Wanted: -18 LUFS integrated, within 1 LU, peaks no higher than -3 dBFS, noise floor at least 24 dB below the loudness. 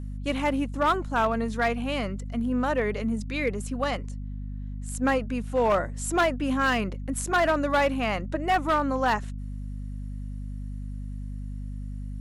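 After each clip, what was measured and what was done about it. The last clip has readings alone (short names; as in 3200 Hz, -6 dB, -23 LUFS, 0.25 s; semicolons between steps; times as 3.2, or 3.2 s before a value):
clipped 0.9%; flat tops at -17.0 dBFS; hum 50 Hz; harmonics up to 250 Hz; hum level -32 dBFS; loudness -26.5 LUFS; peak -17.0 dBFS; loudness target -18.0 LUFS
-> clip repair -17 dBFS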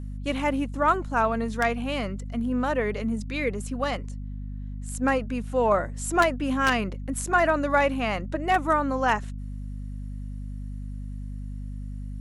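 clipped 0.0%; hum 50 Hz; harmonics up to 250 Hz; hum level -32 dBFS
-> notches 50/100/150/200/250 Hz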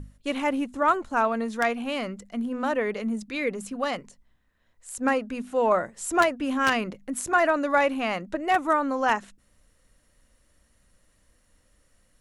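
hum none; loudness -26.0 LUFS; peak -7.5 dBFS; loudness target -18.0 LUFS
-> gain +8 dB; limiter -3 dBFS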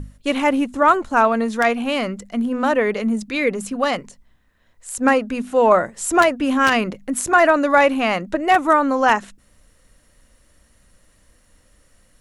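loudness -18.5 LUFS; peak -3.0 dBFS; noise floor -58 dBFS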